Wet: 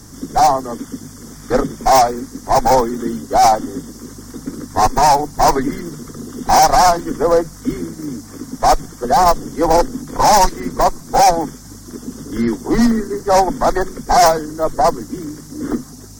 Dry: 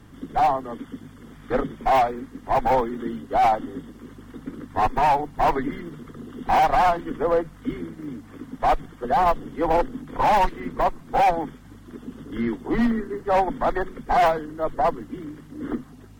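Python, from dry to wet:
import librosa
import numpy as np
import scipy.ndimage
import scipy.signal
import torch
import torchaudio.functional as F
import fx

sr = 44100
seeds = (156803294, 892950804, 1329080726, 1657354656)

y = fx.high_shelf_res(x, sr, hz=4100.0, db=12.0, q=3.0)
y = y * 10.0 ** (8.0 / 20.0)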